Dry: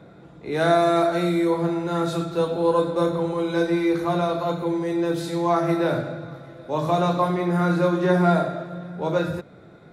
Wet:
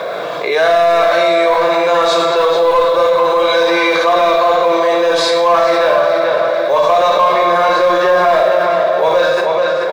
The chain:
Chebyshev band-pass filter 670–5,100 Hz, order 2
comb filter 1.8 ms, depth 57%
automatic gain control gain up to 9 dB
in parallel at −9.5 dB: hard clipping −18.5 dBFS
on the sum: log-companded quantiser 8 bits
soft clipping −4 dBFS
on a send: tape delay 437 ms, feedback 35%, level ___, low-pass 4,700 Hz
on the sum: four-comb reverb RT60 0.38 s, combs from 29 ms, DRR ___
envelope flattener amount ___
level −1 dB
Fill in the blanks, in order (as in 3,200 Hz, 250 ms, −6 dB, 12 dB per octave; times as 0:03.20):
−7 dB, 5 dB, 70%